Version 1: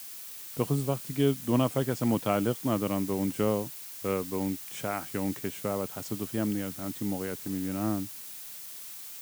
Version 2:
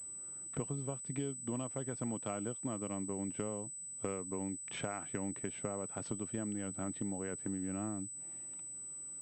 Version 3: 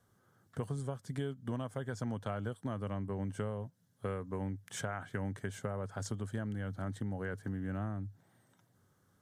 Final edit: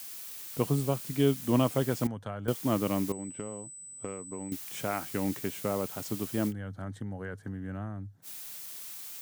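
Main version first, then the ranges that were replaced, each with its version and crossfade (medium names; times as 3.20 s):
1
2.07–2.48 s: from 3
3.12–4.52 s: from 2
6.50–8.25 s: from 3, crossfade 0.06 s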